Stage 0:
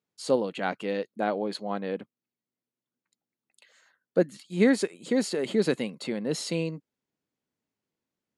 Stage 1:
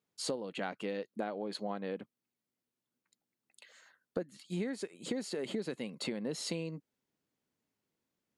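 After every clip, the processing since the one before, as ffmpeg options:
ffmpeg -i in.wav -af "acompressor=threshold=-34dB:ratio=16,volume=1dB" out.wav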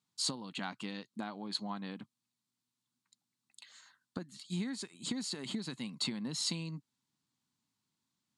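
ffmpeg -i in.wav -af "equalizer=frequency=125:width_type=o:width=1:gain=10,equalizer=frequency=250:width_type=o:width=1:gain=7,equalizer=frequency=500:width_type=o:width=1:gain=-12,equalizer=frequency=1000:width_type=o:width=1:gain=11,equalizer=frequency=4000:width_type=o:width=1:gain=11,equalizer=frequency=8000:width_type=o:width=1:gain=10,volume=-6.5dB" out.wav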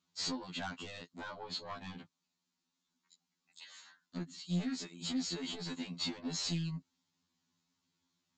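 ffmpeg -i in.wav -af "aresample=16000,asoftclip=type=tanh:threshold=-37.5dB,aresample=44100,afftfilt=real='re*2*eq(mod(b,4),0)':imag='im*2*eq(mod(b,4),0)':win_size=2048:overlap=0.75,volume=6dB" out.wav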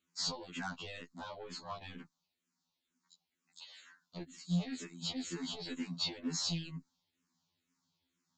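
ffmpeg -i in.wav -filter_complex "[0:a]asplit=2[link_01][link_02];[link_02]afreqshift=-2.1[link_03];[link_01][link_03]amix=inputs=2:normalize=1,volume=2.5dB" out.wav

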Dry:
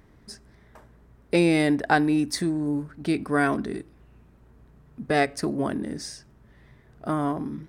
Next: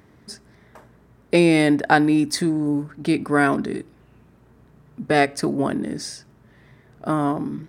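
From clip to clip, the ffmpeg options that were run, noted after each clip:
ffmpeg -i in.wav -af "highpass=93,volume=4.5dB" out.wav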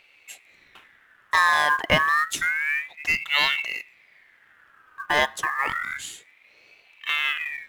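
ffmpeg -i in.wav -af "acrusher=bits=7:mode=log:mix=0:aa=0.000001,aeval=exprs='val(0)*sin(2*PI*1900*n/s+1900*0.3/0.29*sin(2*PI*0.29*n/s))':channel_layout=same,volume=-1dB" out.wav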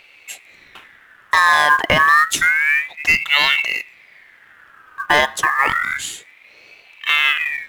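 ffmpeg -i in.wav -af "alimiter=level_in=10dB:limit=-1dB:release=50:level=0:latency=1,volume=-1dB" out.wav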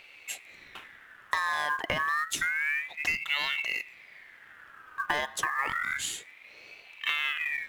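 ffmpeg -i in.wav -af "acompressor=threshold=-22dB:ratio=6,volume=-4.5dB" out.wav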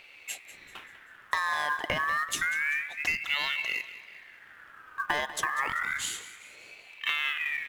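ffmpeg -i in.wav -af "aecho=1:1:194|388|582|776:0.178|0.0818|0.0376|0.0173" out.wav

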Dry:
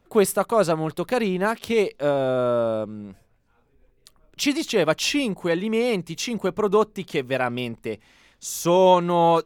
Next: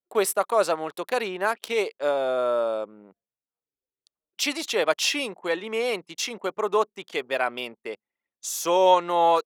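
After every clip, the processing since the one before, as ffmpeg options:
ffmpeg -i in.wav -af "anlmdn=0.631,highpass=500" out.wav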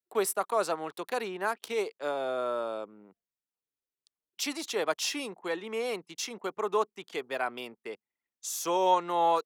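ffmpeg -i in.wav -filter_complex "[0:a]equalizer=frequency=570:width=4.2:gain=-5.5,acrossover=split=340|2000|3700[link_01][link_02][link_03][link_04];[link_03]acompressor=threshold=-45dB:ratio=6[link_05];[link_01][link_02][link_05][link_04]amix=inputs=4:normalize=0,volume=-4.5dB" out.wav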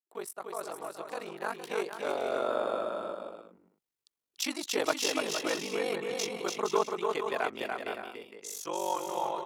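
ffmpeg -i in.wav -af "aeval=exprs='val(0)*sin(2*PI*24*n/s)':channel_layout=same,dynaudnorm=framelen=460:gausssize=7:maxgain=12dB,aecho=1:1:290|464|568.4|631|668.6:0.631|0.398|0.251|0.158|0.1,volume=-9dB" out.wav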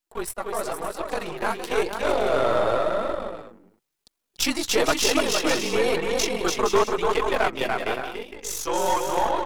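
ffmpeg -i in.wav -af "aeval=exprs='if(lt(val(0),0),0.447*val(0),val(0))':channel_layout=same,flanger=delay=2.8:depth=7.5:regen=0:speed=0.96:shape=triangular,aeval=exprs='0.126*sin(PI/2*1.78*val(0)/0.126)':channel_layout=same,volume=6.5dB" out.wav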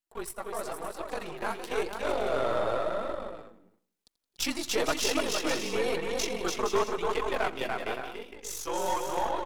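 ffmpeg -i in.wav -af "aecho=1:1:85|170|255|340:0.112|0.0595|0.0315|0.0167,volume=-7dB" out.wav

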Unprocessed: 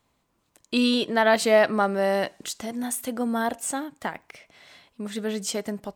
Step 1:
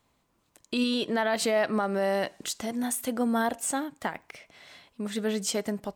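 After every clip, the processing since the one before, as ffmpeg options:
ffmpeg -i in.wav -af "alimiter=limit=-17.5dB:level=0:latency=1:release=122" out.wav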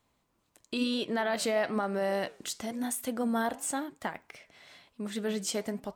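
ffmpeg -i in.wav -af "flanger=delay=2.6:depth=8.1:regen=-86:speed=1:shape=triangular,volume=1dB" out.wav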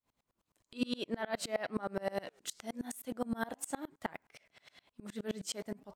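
ffmpeg -i in.wav -af "aeval=exprs='val(0)*pow(10,-29*if(lt(mod(-9.6*n/s,1),2*abs(-9.6)/1000),1-mod(-9.6*n/s,1)/(2*abs(-9.6)/1000),(mod(-9.6*n/s,1)-2*abs(-9.6)/1000)/(1-2*abs(-9.6)/1000))/20)':channel_layout=same,volume=1dB" out.wav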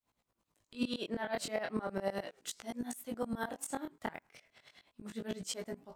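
ffmpeg -i in.wav -af "flanger=delay=16.5:depth=7.4:speed=0.36,volume=3dB" out.wav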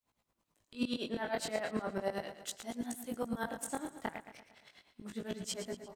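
ffmpeg -i in.wav -af "aecho=1:1:115|230|345|460|575:0.282|0.144|0.0733|0.0374|0.0191" out.wav

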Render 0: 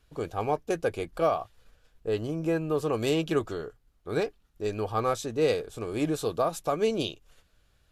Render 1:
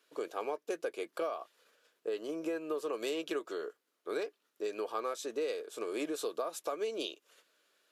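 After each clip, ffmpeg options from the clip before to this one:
ffmpeg -i in.wav -af "highpass=frequency=330:width=0.5412,highpass=frequency=330:width=1.3066,equalizer=frequency=780:width=6:gain=-9,acompressor=threshold=-33dB:ratio=5" out.wav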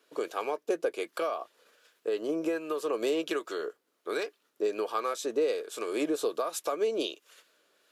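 ffmpeg -i in.wav -filter_complex "[0:a]acrossover=split=1000[link_01][link_02];[link_01]aeval=exprs='val(0)*(1-0.5/2+0.5/2*cos(2*PI*1.3*n/s))':channel_layout=same[link_03];[link_02]aeval=exprs='val(0)*(1-0.5/2-0.5/2*cos(2*PI*1.3*n/s))':channel_layout=same[link_04];[link_03][link_04]amix=inputs=2:normalize=0,volume=8dB" out.wav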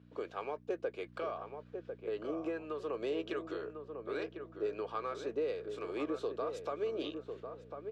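ffmpeg -i in.wav -filter_complex "[0:a]aeval=exprs='val(0)+0.00562*(sin(2*PI*60*n/s)+sin(2*PI*2*60*n/s)/2+sin(2*PI*3*60*n/s)/3+sin(2*PI*4*60*n/s)/4+sin(2*PI*5*60*n/s)/5)':channel_layout=same,highpass=130,lowpass=3400,asplit=2[link_01][link_02];[link_02]adelay=1049,lowpass=frequency=1200:poles=1,volume=-6dB,asplit=2[link_03][link_04];[link_04]adelay=1049,lowpass=frequency=1200:poles=1,volume=0.29,asplit=2[link_05][link_06];[link_06]adelay=1049,lowpass=frequency=1200:poles=1,volume=0.29,asplit=2[link_07][link_08];[link_08]adelay=1049,lowpass=frequency=1200:poles=1,volume=0.29[link_09];[link_03][link_05][link_07][link_09]amix=inputs=4:normalize=0[link_10];[link_01][link_10]amix=inputs=2:normalize=0,volume=-7.5dB" out.wav

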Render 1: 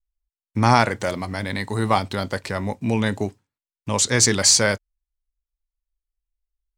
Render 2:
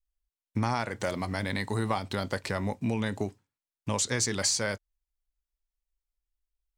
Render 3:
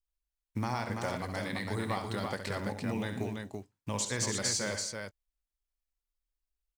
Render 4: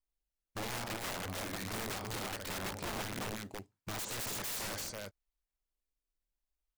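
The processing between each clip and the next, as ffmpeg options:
ffmpeg -i in.wav -af "acompressor=threshold=-22dB:ratio=5,volume=-3dB" out.wav
ffmpeg -i in.wav -filter_complex "[0:a]acrusher=bits=8:mode=log:mix=0:aa=0.000001,asplit=2[link_01][link_02];[link_02]aecho=0:1:67|119|222|334:0.376|0.188|0.119|0.596[link_03];[link_01][link_03]amix=inputs=2:normalize=0,volume=-5.5dB" out.wav
ffmpeg -i in.wav -filter_complex "[0:a]asplit=2[link_01][link_02];[link_02]acrusher=samples=21:mix=1:aa=0.000001:lfo=1:lforange=33.6:lforate=0.7,volume=-7dB[link_03];[link_01][link_03]amix=inputs=2:normalize=0,aeval=exprs='(mod(26.6*val(0)+1,2)-1)/26.6':channel_layout=same,volume=-5dB" out.wav

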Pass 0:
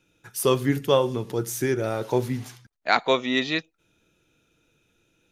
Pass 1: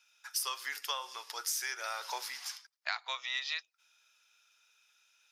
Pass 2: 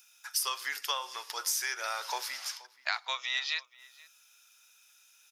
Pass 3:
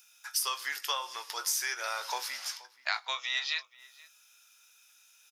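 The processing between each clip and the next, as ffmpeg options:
ffmpeg -i in.wav -af "highpass=frequency=970:width=0.5412,highpass=frequency=970:width=1.3066,acompressor=threshold=-33dB:ratio=12,equalizer=frequency=5100:width=3.8:gain=12" out.wav
ffmpeg -i in.wav -filter_complex "[0:a]acrossover=split=7900[link_01][link_02];[link_02]acompressor=mode=upward:threshold=-56dB:ratio=2.5[link_03];[link_01][link_03]amix=inputs=2:normalize=0,asplit=2[link_04][link_05];[link_05]adelay=478.1,volume=-20dB,highshelf=frequency=4000:gain=-10.8[link_06];[link_04][link_06]amix=inputs=2:normalize=0,volume=3.5dB" out.wav
ffmpeg -i in.wav -filter_complex "[0:a]asplit=2[link_01][link_02];[link_02]adelay=20,volume=-10.5dB[link_03];[link_01][link_03]amix=inputs=2:normalize=0" out.wav

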